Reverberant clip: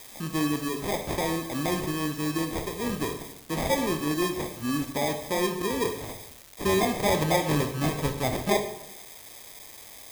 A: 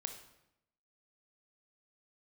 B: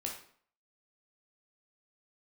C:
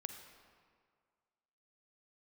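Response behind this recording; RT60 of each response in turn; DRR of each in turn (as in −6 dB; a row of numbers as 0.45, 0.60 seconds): A; 0.85, 0.55, 2.0 seconds; 6.0, −1.0, 6.5 decibels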